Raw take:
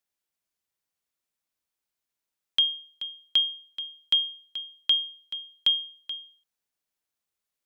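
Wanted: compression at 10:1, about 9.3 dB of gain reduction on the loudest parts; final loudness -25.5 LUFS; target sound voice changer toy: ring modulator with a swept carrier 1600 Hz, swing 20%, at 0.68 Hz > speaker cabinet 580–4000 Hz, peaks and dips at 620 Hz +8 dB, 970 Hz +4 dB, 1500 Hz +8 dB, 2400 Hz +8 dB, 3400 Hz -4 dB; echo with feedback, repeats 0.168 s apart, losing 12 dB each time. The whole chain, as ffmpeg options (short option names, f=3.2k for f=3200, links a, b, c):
-af "acompressor=threshold=-27dB:ratio=10,aecho=1:1:168|336|504:0.251|0.0628|0.0157,aeval=exprs='val(0)*sin(2*PI*1600*n/s+1600*0.2/0.68*sin(2*PI*0.68*n/s))':c=same,highpass=580,equalizer=f=620:t=q:w=4:g=8,equalizer=f=970:t=q:w=4:g=4,equalizer=f=1.5k:t=q:w=4:g=8,equalizer=f=2.4k:t=q:w=4:g=8,equalizer=f=3.4k:t=q:w=4:g=-4,lowpass=f=4k:w=0.5412,lowpass=f=4k:w=1.3066,volume=9dB"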